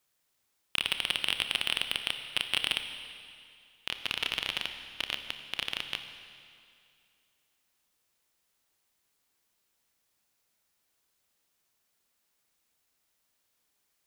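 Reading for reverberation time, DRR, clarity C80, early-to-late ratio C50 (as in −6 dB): 2.4 s, 7.5 dB, 9.0 dB, 8.5 dB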